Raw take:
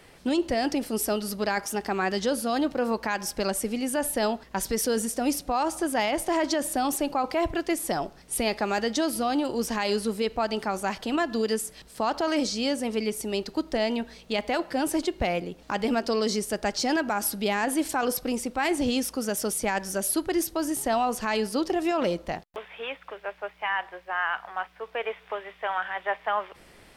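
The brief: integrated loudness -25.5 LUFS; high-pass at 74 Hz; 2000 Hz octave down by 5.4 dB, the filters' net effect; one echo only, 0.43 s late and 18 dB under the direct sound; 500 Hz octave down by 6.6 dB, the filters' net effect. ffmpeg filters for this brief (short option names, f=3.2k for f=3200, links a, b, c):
-af "highpass=74,equalizer=f=500:t=o:g=-8.5,equalizer=f=2k:t=o:g=-6.5,aecho=1:1:430:0.126,volume=5.5dB"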